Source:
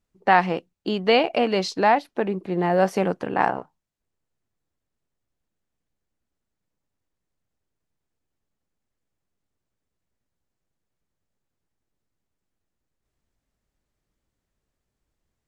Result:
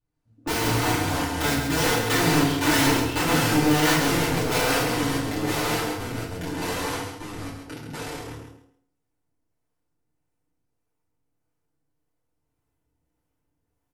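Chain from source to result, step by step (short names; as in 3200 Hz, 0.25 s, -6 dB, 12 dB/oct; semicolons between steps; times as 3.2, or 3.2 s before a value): speed glide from 57% -> 165%; bell 4200 Hz -6.5 dB 1.6 oct; wrapped overs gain 18 dB; harmonic tremolo 1.7 Hz, depth 50%, crossover 450 Hz; echoes that change speed 0.115 s, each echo -3 st, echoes 3; on a send: feedback echo 0.134 s, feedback 22%, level -7 dB; on the sum: FDN reverb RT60 0.49 s, low-frequency decay 1×, high-frequency decay 0.8×, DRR -8 dB; gain -6.5 dB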